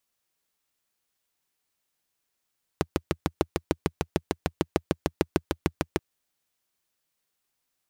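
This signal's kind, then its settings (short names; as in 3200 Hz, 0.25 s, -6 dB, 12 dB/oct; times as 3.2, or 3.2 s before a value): single-cylinder engine model, steady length 3.18 s, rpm 800, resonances 83/160/320 Hz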